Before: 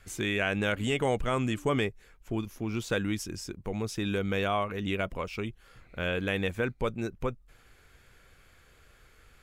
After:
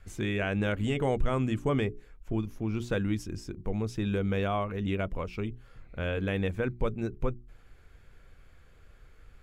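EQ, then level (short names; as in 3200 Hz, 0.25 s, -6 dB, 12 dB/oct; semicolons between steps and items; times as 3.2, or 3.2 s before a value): tilt -2 dB/oct; notches 60/120/180/240/300/360/420 Hz; -2.5 dB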